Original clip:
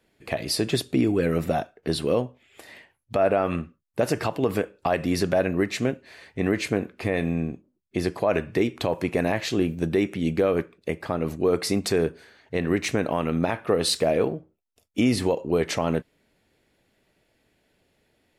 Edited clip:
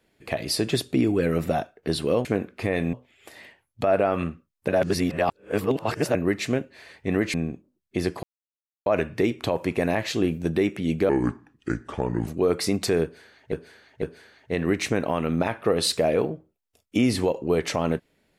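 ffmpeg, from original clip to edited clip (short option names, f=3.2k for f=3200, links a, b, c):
-filter_complex "[0:a]asplit=11[a][b][c][d][e][f][g][h][i][j][k];[a]atrim=end=2.252[l];[b]atrim=start=6.658:end=7.342[m];[c]atrim=start=2.248:end=4.002[n];[d]atrim=start=3.998:end=5.472,asetpts=PTS-STARTPTS,areverse[o];[e]atrim=start=5.468:end=6.662[p];[f]atrim=start=7.338:end=8.23,asetpts=PTS-STARTPTS,afade=t=out:st=0.888:d=0.004:c=hsin,apad=pad_dur=0.63[q];[g]atrim=start=8.23:end=10.464,asetpts=PTS-STARTPTS,afade=t=in:d=0.004:c=hsin[r];[h]atrim=start=10.46:end=11.3,asetpts=PTS-STARTPTS,asetrate=31311,aresample=44100[s];[i]atrim=start=11.296:end=12.552[t];[j]atrim=start=12.048:end=12.552[u];[k]atrim=start=12.048[v];[l][m]acrossfade=d=0.004:c1=hsin:c2=hsin[w];[w][n]acrossfade=d=0.004:c1=hsin:c2=hsin[x];[x][o]acrossfade=d=0.004:c1=hsin:c2=hsin[y];[y][p]acrossfade=d=0.004:c1=hsin:c2=hsin[z];[q][r]concat=n=2:v=0:a=1[aa];[z][aa]acrossfade=d=0.004:c1=hsin:c2=hsin[ab];[ab][s]acrossfade=d=0.004:c1=hsin:c2=hsin[ac];[ac][t]acrossfade=d=0.004:c1=hsin:c2=hsin[ad];[ad][u]acrossfade=d=0.004:c1=hsin:c2=hsin[ae];[ae][v]acrossfade=d=0.004:c1=hsin:c2=hsin"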